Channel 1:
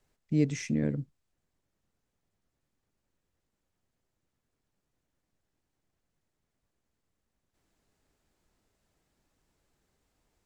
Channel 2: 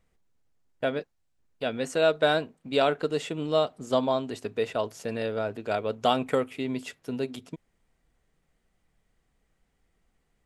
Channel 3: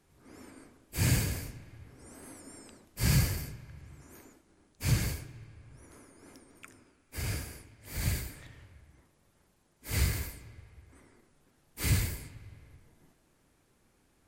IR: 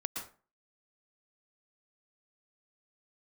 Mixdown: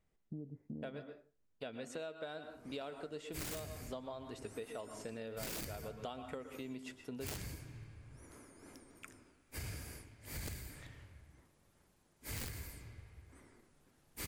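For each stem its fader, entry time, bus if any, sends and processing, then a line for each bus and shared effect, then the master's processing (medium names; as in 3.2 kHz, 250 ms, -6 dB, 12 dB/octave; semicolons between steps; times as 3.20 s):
-12.0 dB, 0.00 s, send -20.5 dB, compression, threshold -26 dBFS, peak gain reduction 7 dB; inverse Chebyshev low-pass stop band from 3.5 kHz, stop band 70 dB
-12.5 dB, 0.00 s, send -5 dB, none
-2.5 dB, 2.40 s, no send, integer overflow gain 22.5 dB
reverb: on, RT60 0.35 s, pre-delay 108 ms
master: compression 10:1, threshold -41 dBFS, peak gain reduction 16.5 dB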